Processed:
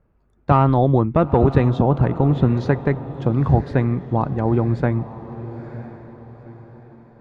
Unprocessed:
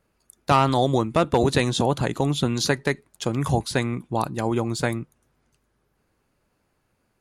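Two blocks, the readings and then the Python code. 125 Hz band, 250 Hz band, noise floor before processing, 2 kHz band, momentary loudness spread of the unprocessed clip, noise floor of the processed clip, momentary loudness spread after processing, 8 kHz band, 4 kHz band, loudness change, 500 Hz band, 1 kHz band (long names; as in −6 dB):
+8.5 dB, +5.5 dB, −71 dBFS, −3.5 dB, 7 LU, −60 dBFS, 17 LU, below −25 dB, below −10 dB, +4.5 dB, +3.0 dB, +1.5 dB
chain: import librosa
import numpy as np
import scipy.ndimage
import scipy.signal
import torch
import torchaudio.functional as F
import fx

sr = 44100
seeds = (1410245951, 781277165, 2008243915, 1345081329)

p1 = scipy.signal.sosfilt(scipy.signal.butter(2, 1400.0, 'lowpass', fs=sr, output='sos'), x)
p2 = fx.low_shelf(p1, sr, hz=150.0, db=11.0)
p3 = p2 + fx.echo_diffused(p2, sr, ms=938, feedback_pct=41, wet_db=-14.0, dry=0)
y = p3 * librosa.db_to_amplitude(2.0)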